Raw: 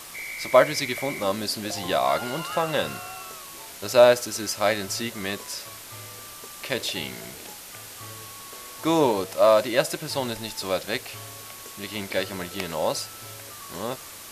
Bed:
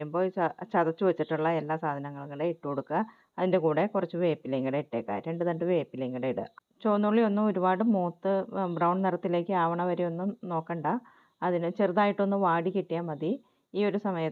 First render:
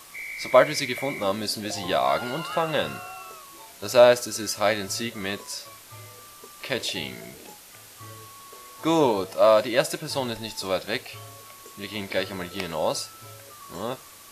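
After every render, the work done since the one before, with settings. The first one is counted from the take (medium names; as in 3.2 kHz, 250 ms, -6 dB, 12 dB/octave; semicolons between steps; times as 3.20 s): noise print and reduce 6 dB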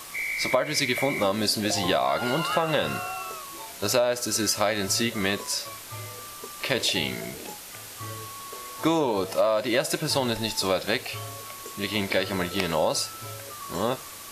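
in parallel at 0 dB: peak limiter -14.5 dBFS, peak gain reduction 10.5 dB; on the sum: compression 16:1, threshold -19 dBFS, peak gain reduction 13 dB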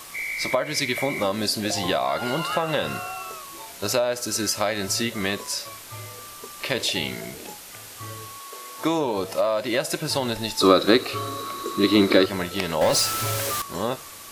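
8.38–8.97 s: high-pass 420 Hz -> 120 Hz; 10.60–12.26 s: small resonant body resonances 320/1200/3900 Hz, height 17 dB, ringing for 20 ms; 12.81–13.62 s: power-law waveshaper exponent 0.5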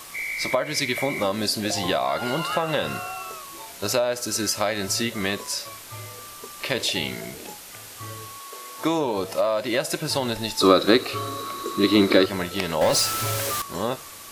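no audible change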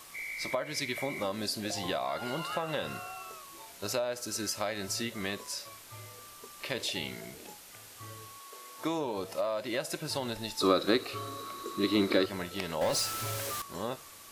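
trim -9.5 dB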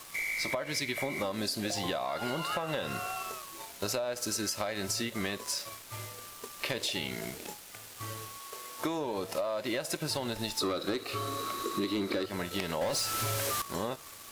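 waveshaping leveller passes 2; compression 6:1, threshold -30 dBFS, peak gain reduction 13 dB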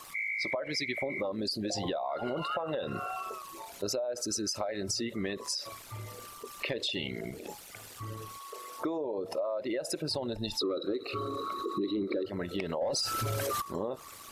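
resonances exaggerated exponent 2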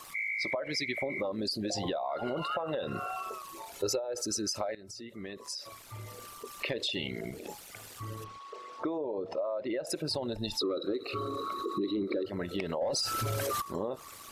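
3.75–4.22 s: comb 2.3 ms, depth 67%; 4.75–6.35 s: fade in, from -17.5 dB; 8.24–9.87 s: distance through air 150 m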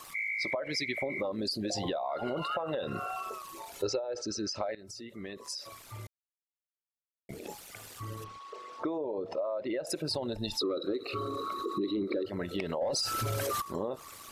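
3.85–4.78 s: low-pass 5.4 kHz 24 dB/octave; 6.07–7.29 s: mute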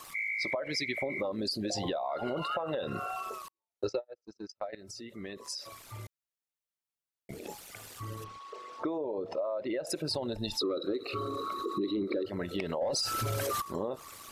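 3.48–4.73 s: gate -33 dBFS, range -51 dB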